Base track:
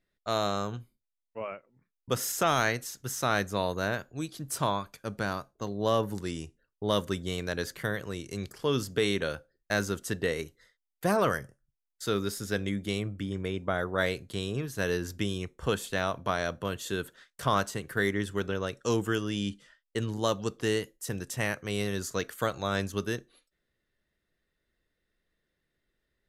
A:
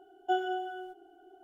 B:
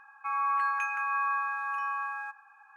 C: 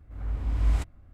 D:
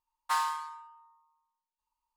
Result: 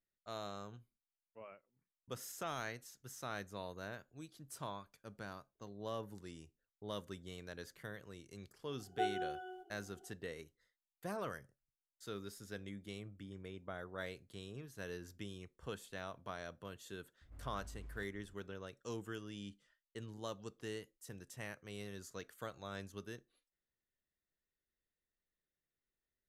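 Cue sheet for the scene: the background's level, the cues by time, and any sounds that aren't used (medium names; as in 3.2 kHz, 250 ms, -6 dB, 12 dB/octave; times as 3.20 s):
base track -16.5 dB
8.70 s: add A -7.5 dB
17.21 s: add C -12 dB + compression 10:1, threshold -36 dBFS
not used: B, D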